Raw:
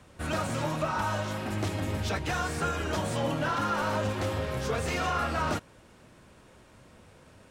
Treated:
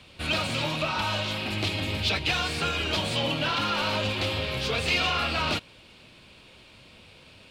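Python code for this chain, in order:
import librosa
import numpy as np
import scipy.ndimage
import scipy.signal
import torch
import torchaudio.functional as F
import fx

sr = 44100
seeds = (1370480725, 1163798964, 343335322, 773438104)

y = fx.band_shelf(x, sr, hz=3300.0, db=13.5, octaves=1.3)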